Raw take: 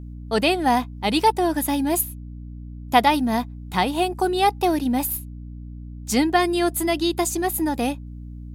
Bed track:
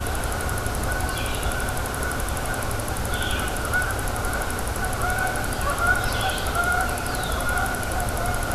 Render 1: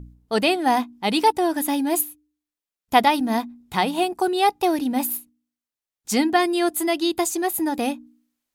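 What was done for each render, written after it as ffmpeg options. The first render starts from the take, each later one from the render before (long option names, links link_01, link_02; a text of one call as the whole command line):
ffmpeg -i in.wav -af "bandreject=frequency=60:width_type=h:width=4,bandreject=frequency=120:width_type=h:width=4,bandreject=frequency=180:width_type=h:width=4,bandreject=frequency=240:width_type=h:width=4,bandreject=frequency=300:width_type=h:width=4" out.wav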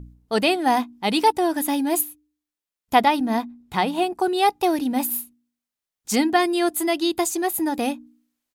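ffmpeg -i in.wav -filter_complex "[0:a]asettb=1/sr,asplit=3[link_01][link_02][link_03];[link_01]atrim=end=2.954[link_04];[link_02]atrim=start=2.95:end=4.28,asetpts=PTS-STARTPTS,afade=type=in:duration=0.004:curve=qsin,afade=type=out:start_time=1.326:duration=0.004:curve=qsin,highshelf=frequency=4000:gain=-5.5[link_05];[link_03]atrim=start=4.276[link_06];[link_04][link_05]acrossfade=duration=0.004:curve1=hsin:curve2=qsin[link_07];[link_07][link_06]acrossfade=duration=0.004:curve1=qsin:curve2=hsin,asplit=3[link_08][link_09][link_10];[link_08]afade=type=out:start_time=5.11:duration=0.02[link_11];[link_09]asplit=2[link_12][link_13];[link_13]adelay=42,volume=-2.5dB[link_14];[link_12][link_14]amix=inputs=2:normalize=0,afade=type=in:start_time=5.11:duration=0.02,afade=type=out:start_time=6.14:duration=0.02[link_15];[link_10]afade=type=in:start_time=6.14:duration=0.02[link_16];[link_11][link_15][link_16]amix=inputs=3:normalize=0" out.wav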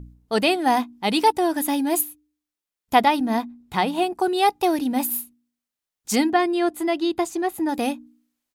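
ffmpeg -i in.wav -filter_complex "[0:a]asettb=1/sr,asplit=3[link_01][link_02][link_03];[link_01]atrim=end=6.304[link_04];[link_02]atrim=start=6.3:end=7.69,asetpts=PTS-STARTPTS,afade=type=in:duration=0.004:curve=qsin,afade=type=out:start_time=1.386:duration=0.004:curve=qsin,lowpass=frequency=2300:poles=1[link_05];[link_03]atrim=start=7.686[link_06];[link_04][link_05]acrossfade=duration=0.004:curve1=hsin:curve2=qsin[link_07];[link_07][link_06]acrossfade=duration=0.004:curve1=qsin:curve2=hsin" out.wav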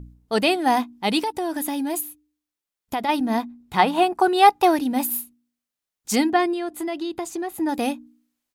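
ffmpeg -i in.wav -filter_complex "[0:a]asplit=3[link_01][link_02][link_03];[link_01]afade=type=out:start_time=1.19:duration=0.02[link_04];[link_02]acompressor=threshold=-22dB:ratio=6:attack=3.2:release=140:knee=1:detection=peak,afade=type=in:start_time=1.19:duration=0.02,afade=type=out:start_time=3.08:duration=0.02[link_05];[link_03]afade=type=in:start_time=3.08:duration=0.02[link_06];[link_04][link_05][link_06]amix=inputs=3:normalize=0,asettb=1/sr,asplit=3[link_07][link_08][link_09];[link_07]atrim=end=3.794[link_10];[link_08]atrim=start=3.79:end=4.78,asetpts=PTS-STARTPTS,afade=type=in:duration=0.004:curve=qsin,afade=type=out:start_time=0.986:duration=0.004:curve=qsin,equalizer=frequency=1200:width=0.65:gain=7.5[link_11];[link_09]atrim=start=4.776[link_12];[link_10][link_11]acrossfade=duration=0.004:curve1=hsin:curve2=qsin[link_13];[link_13][link_12]acrossfade=duration=0.004:curve1=qsin:curve2=hsin,asettb=1/sr,asplit=3[link_14][link_15][link_16];[link_14]atrim=end=6.534[link_17];[link_15]atrim=start=6.53:end=7.57,asetpts=PTS-STARTPTS,afade=type=in:duration=0.004:curve=qsin,afade=type=out:start_time=1.036:duration=0.004:curve=qsin,acompressor=threshold=-24dB:ratio=6:attack=3.2:release=140:knee=1:detection=peak[link_18];[link_16]atrim=start=7.566[link_19];[link_17][link_18]acrossfade=duration=0.004:curve1=hsin:curve2=qsin[link_20];[link_20][link_19]acrossfade=duration=0.004:curve1=qsin:curve2=hsin" out.wav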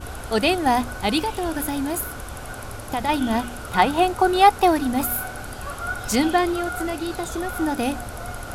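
ffmpeg -i in.wav -i bed.wav -filter_complex "[1:a]volume=-8dB[link_01];[0:a][link_01]amix=inputs=2:normalize=0" out.wav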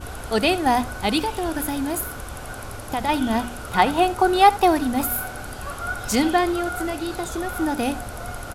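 ffmpeg -i in.wav -af "aecho=1:1:72:0.126" out.wav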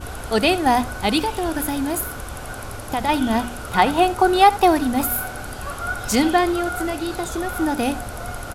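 ffmpeg -i in.wav -af "volume=2dB,alimiter=limit=-3dB:level=0:latency=1" out.wav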